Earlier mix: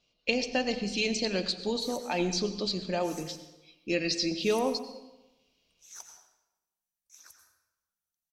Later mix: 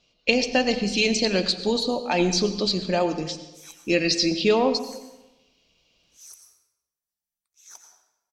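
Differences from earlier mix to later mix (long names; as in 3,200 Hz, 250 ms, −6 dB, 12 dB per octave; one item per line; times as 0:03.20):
speech +7.5 dB
background: entry +1.75 s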